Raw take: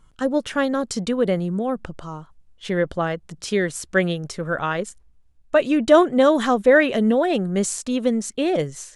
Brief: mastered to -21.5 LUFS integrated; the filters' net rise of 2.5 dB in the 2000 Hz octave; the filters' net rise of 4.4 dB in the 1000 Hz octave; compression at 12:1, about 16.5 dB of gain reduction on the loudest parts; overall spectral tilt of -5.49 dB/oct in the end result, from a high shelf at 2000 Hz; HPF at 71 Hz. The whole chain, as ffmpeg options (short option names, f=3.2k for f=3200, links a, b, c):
-af "highpass=71,equalizer=f=1k:t=o:g=6.5,highshelf=f=2k:g=-7,equalizer=f=2k:t=o:g=4.5,acompressor=threshold=-23dB:ratio=12,volume=7.5dB"